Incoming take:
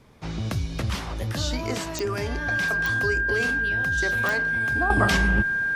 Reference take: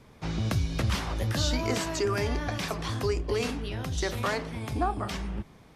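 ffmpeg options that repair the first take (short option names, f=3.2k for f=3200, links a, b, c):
-af "adeclick=t=4,bandreject=f=1.6k:w=30,asetnsamples=n=441:p=0,asendcmd='4.9 volume volume -11.5dB',volume=0dB"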